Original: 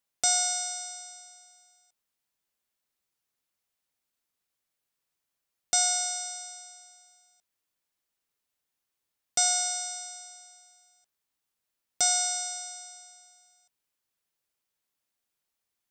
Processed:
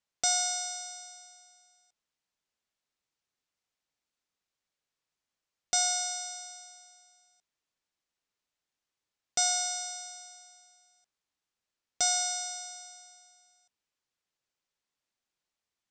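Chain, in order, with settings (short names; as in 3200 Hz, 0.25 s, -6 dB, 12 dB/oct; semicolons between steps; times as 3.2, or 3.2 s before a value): LPF 7500 Hz 24 dB/oct; gain -1.5 dB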